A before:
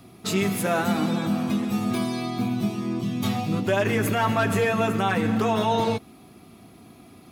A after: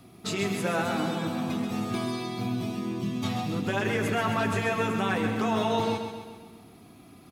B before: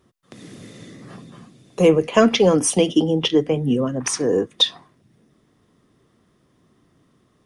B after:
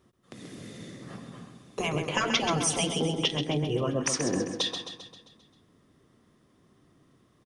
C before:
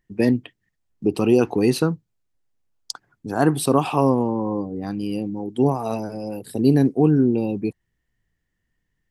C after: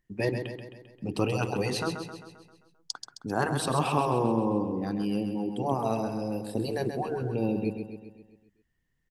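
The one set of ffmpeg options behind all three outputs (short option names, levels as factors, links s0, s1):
-filter_complex "[0:a]afftfilt=real='re*lt(hypot(re,im),0.708)':imag='im*lt(hypot(re,im),0.708)':win_size=1024:overlap=0.75,acrossover=split=9100[s0][s1];[s1]acompressor=threshold=0.00224:ratio=4:attack=1:release=60[s2];[s0][s2]amix=inputs=2:normalize=0,aecho=1:1:132|264|396|528|660|792|924:0.422|0.228|0.123|0.0664|0.0359|0.0194|0.0105,volume=0.668"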